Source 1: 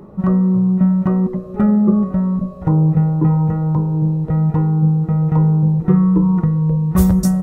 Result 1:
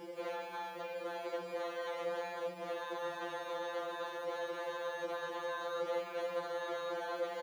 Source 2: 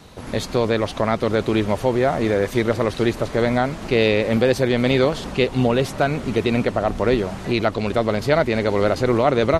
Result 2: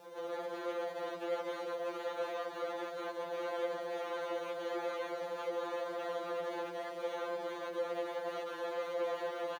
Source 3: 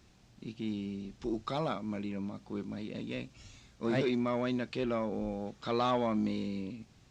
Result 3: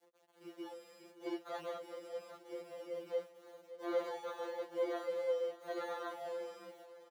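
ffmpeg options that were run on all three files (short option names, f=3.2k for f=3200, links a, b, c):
-filter_complex "[0:a]aemphasis=mode=reproduction:type=50fm,acrusher=samples=17:mix=1:aa=0.000001,equalizer=f=2.4k:w=6.5:g=-6,alimiter=limit=-13.5dB:level=0:latency=1:release=75,aeval=exprs='0.0316*(abs(mod(val(0)/0.0316+3,4)-2)-1)':c=same,acrusher=bits=8:mix=0:aa=0.000001,acrossover=split=4300[a][b];[b]acompressor=threshold=-57dB:ratio=4:attack=1:release=60[c];[a][c]amix=inputs=2:normalize=0,highpass=f=470:t=q:w=4.9,aecho=1:1:570|1140|1710:0.178|0.0605|0.0206,afftfilt=real='re*2.83*eq(mod(b,8),0)':imag='im*2.83*eq(mod(b,8),0)':win_size=2048:overlap=0.75,volume=-5.5dB"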